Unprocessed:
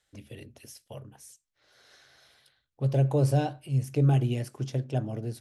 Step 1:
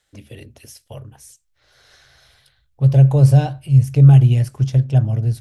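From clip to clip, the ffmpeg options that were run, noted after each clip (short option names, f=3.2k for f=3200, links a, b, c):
-af "asubboost=boost=11:cutoff=95,volume=6.5dB"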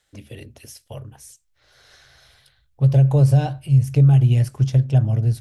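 -af "acompressor=threshold=-10dB:ratio=6"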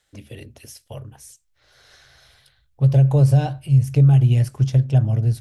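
-af anull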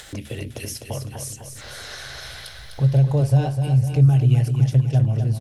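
-af "acompressor=mode=upward:threshold=-19dB:ratio=2.5,aecho=1:1:253|506|759|1012|1265|1518|1771:0.447|0.241|0.13|0.0703|0.038|0.0205|0.0111,volume=-2dB"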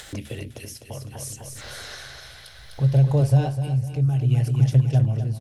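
-af "tremolo=f=0.63:d=0.56"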